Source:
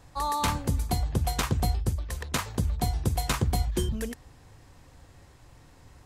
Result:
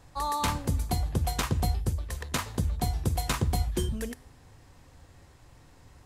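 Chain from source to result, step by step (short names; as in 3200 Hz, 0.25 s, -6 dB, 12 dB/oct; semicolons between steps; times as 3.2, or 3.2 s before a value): resonator 83 Hz, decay 0.74 s, harmonics all, mix 40%; gain +2.5 dB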